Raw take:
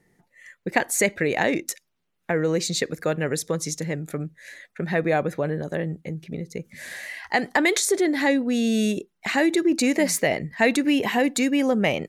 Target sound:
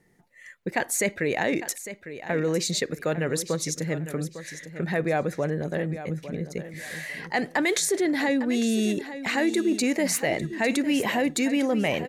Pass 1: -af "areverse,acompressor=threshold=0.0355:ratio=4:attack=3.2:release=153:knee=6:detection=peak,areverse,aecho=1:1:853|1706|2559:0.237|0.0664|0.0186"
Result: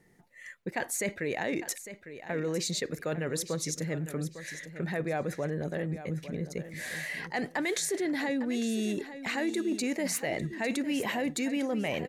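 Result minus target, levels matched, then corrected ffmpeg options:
compression: peak gain reduction +7.5 dB
-af "areverse,acompressor=threshold=0.112:ratio=4:attack=3.2:release=153:knee=6:detection=peak,areverse,aecho=1:1:853|1706|2559:0.237|0.0664|0.0186"

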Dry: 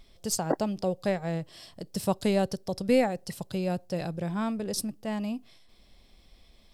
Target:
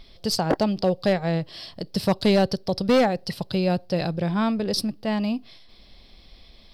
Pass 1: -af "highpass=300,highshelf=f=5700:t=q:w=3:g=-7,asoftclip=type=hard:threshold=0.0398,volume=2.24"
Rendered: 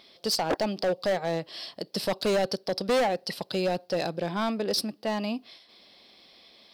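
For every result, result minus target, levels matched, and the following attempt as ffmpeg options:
hard clipper: distortion +8 dB; 250 Hz band -4.0 dB
-af "highpass=300,highshelf=f=5700:t=q:w=3:g=-7,asoftclip=type=hard:threshold=0.0944,volume=2.24"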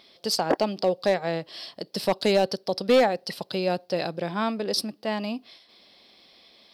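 250 Hz band -4.5 dB
-af "highshelf=f=5700:t=q:w=3:g=-7,asoftclip=type=hard:threshold=0.0944,volume=2.24"

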